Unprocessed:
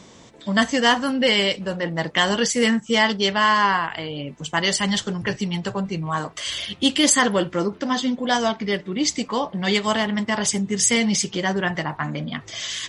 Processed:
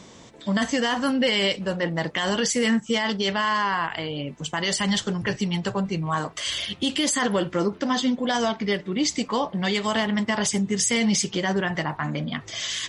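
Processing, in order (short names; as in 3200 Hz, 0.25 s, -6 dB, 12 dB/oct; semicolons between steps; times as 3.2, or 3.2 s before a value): limiter -13.5 dBFS, peak gain reduction 10.5 dB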